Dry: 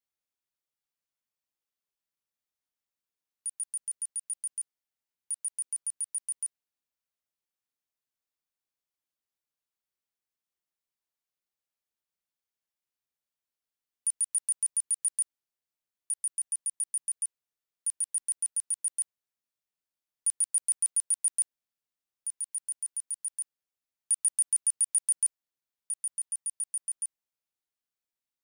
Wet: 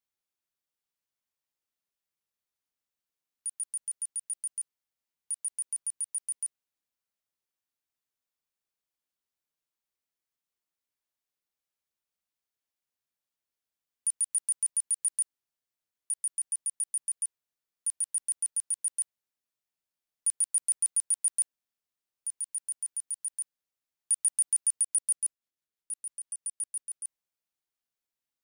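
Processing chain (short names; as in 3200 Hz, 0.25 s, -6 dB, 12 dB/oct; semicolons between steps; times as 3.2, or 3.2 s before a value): 24.83–27.05 rotary speaker horn 6 Hz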